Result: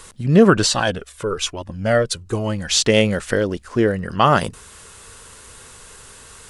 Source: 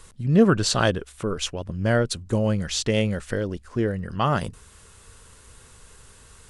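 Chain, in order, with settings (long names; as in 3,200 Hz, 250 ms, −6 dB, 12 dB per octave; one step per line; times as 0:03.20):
low-shelf EQ 180 Hz −9.5 dB
boost into a limiter +10.5 dB
0:00.66–0:02.70: flanger whose copies keep moving one way falling 1.1 Hz
level −1 dB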